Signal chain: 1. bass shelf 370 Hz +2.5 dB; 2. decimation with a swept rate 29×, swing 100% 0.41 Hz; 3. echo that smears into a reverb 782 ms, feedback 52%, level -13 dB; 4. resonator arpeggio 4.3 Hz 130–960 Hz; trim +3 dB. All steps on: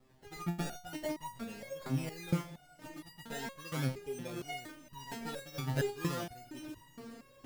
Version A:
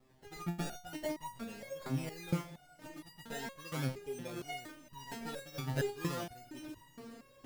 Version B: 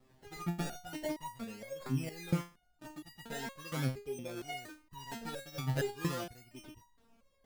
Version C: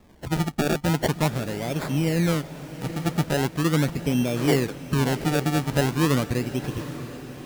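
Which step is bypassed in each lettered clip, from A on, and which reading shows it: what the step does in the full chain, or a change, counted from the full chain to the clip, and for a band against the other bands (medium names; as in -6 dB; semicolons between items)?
1, loudness change -1.5 LU; 3, momentary loudness spread change +1 LU; 4, 250 Hz band +2.5 dB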